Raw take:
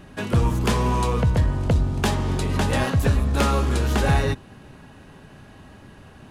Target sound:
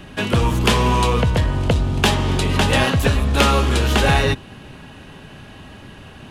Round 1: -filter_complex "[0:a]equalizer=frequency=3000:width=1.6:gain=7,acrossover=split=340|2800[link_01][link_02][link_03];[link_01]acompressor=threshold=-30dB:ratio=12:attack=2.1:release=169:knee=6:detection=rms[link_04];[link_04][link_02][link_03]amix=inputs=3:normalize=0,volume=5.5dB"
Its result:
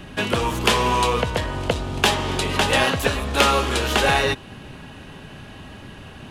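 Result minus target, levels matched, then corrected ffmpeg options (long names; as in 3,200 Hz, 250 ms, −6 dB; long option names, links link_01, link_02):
downward compressor: peak gain reduction +11 dB
-filter_complex "[0:a]equalizer=frequency=3000:width=1.6:gain=7,acrossover=split=340|2800[link_01][link_02][link_03];[link_01]acompressor=threshold=-18dB:ratio=12:attack=2.1:release=169:knee=6:detection=rms[link_04];[link_04][link_02][link_03]amix=inputs=3:normalize=0,volume=5.5dB"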